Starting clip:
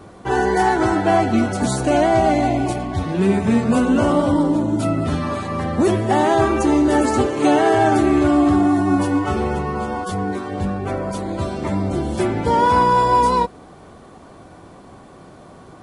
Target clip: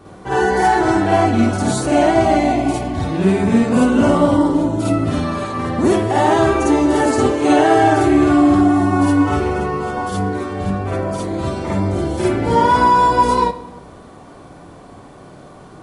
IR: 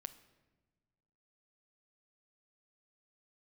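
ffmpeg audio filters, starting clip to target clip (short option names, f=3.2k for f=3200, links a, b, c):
-filter_complex "[0:a]asplit=2[a][b];[1:a]atrim=start_sample=2205,adelay=52[c];[b][c]afir=irnorm=-1:irlink=0,volume=8.5dB[d];[a][d]amix=inputs=2:normalize=0,volume=-3dB"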